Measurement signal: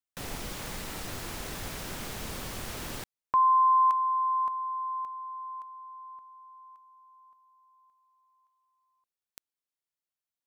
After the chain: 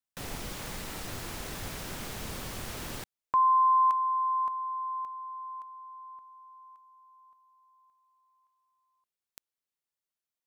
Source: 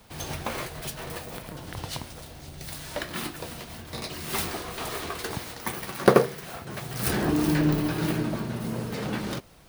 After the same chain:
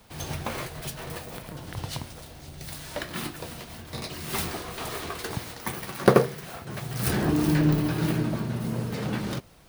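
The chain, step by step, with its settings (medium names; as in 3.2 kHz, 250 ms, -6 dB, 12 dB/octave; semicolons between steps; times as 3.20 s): dynamic bell 120 Hz, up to +5 dB, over -43 dBFS, Q 1; trim -1 dB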